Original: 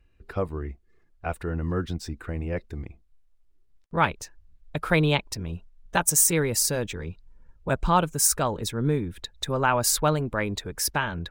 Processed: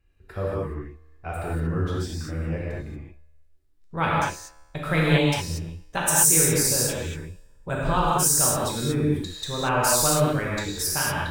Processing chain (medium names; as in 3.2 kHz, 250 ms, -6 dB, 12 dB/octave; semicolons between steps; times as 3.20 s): peaking EQ 12 kHz +3.5 dB 1.9 oct; feedback comb 77 Hz, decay 1.2 s, harmonics all, mix 40%; gated-style reverb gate 260 ms flat, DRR -6 dB; trim -2 dB